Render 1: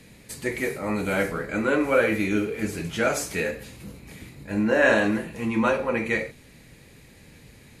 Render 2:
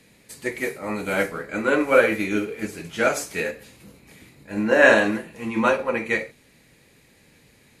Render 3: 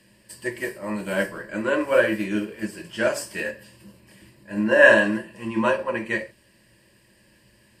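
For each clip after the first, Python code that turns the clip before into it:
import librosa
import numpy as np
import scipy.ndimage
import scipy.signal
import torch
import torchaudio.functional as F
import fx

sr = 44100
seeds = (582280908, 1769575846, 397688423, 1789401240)

y1 = fx.low_shelf(x, sr, hz=150.0, db=-9.5)
y1 = fx.upward_expand(y1, sr, threshold_db=-35.0, expansion=1.5)
y1 = y1 * 10.0 ** (6.0 / 20.0)
y2 = fx.ripple_eq(y1, sr, per_octave=1.3, db=12)
y2 = y2 * 10.0 ** (-3.5 / 20.0)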